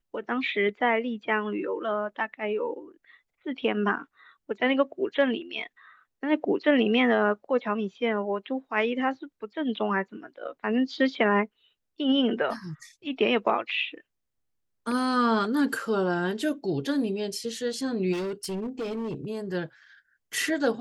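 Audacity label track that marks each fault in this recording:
18.120000	19.250000	clipped -28 dBFS

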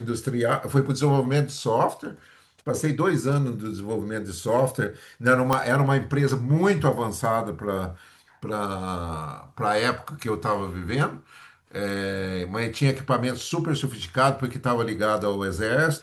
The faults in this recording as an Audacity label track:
5.530000	5.530000	pop -8 dBFS

